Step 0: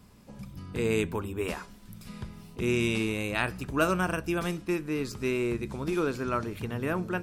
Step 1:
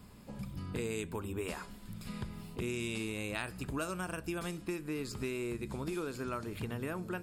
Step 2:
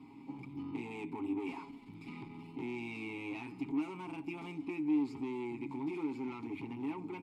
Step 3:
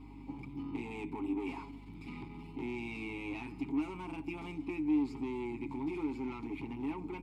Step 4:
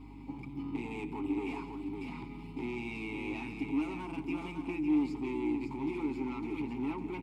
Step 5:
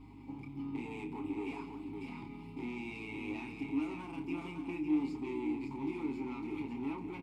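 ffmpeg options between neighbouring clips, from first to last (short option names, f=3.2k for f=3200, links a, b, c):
-filter_complex "[0:a]acrossover=split=9100[a][b];[b]acompressor=threshold=-57dB:ratio=4:attack=1:release=60[c];[a][c]amix=inputs=2:normalize=0,bandreject=f=5.9k:w=5.8,acrossover=split=5200[d][e];[d]acompressor=threshold=-36dB:ratio=6[f];[f][e]amix=inputs=2:normalize=0,volume=1dB"
-filter_complex "[0:a]aecho=1:1:7.4:0.76,aeval=exprs='(tanh(89.1*val(0)+0.35)-tanh(0.35))/89.1':c=same,asplit=3[a][b][c];[a]bandpass=f=300:t=q:w=8,volume=0dB[d];[b]bandpass=f=870:t=q:w=8,volume=-6dB[e];[c]bandpass=f=2.24k:t=q:w=8,volume=-9dB[f];[d][e][f]amix=inputs=3:normalize=0,volume=14.5dB"
-af "aeval=exprs='val(0)+0.00224*(sin(2*PI*50*n/s)+sin(2*PI*2*50*n/s)/2+sin(2*PI*3*50*n/s)/3+sin(2*PI*4*50*n/s)/4+sin(2*PI*5*50*n/s)/5)':c=same,volume=1dB"
-af "aecho=1:1:173|555:0.188|0.501,volume=1.5dB"
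-filter_complex "[0:a]asplit=2[a][b];[b]adelay=29,volume=-6.5dB[c];[a][c]amix=inputs=2:normalize=0,volume=-4dB"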